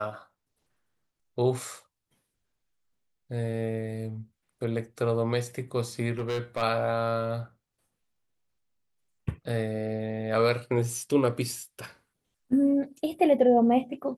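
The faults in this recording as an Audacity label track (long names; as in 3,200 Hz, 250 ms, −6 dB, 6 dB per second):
6.180000	6.630000	clipping −25.5 dBFS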